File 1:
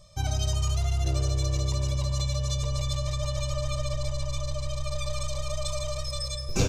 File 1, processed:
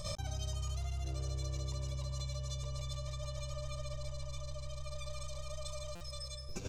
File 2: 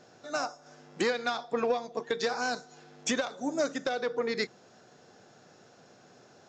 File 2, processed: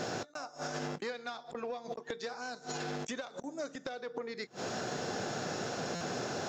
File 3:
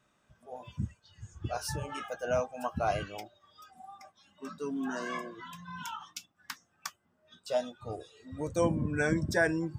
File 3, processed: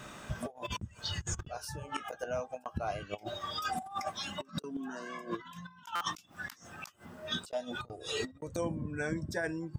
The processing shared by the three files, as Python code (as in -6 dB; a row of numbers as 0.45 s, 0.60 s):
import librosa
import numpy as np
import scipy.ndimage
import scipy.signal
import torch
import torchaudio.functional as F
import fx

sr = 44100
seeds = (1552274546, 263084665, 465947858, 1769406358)

y = fx.gate_flip(x, sr, shuts_db=-29.0, range_db=-30)
y = fx.over_compress(y, sr, threshold_db=-55.0, ratio=-0.5)
y = fx.buffer_glitch(y, sr, at_s=(5.95,), block=256, repeats=9)
y = F.gain(torch.from_numpy(y), 17.5).numpy()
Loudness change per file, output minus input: -12.0 LU, -7.5 LU, -4.5 LU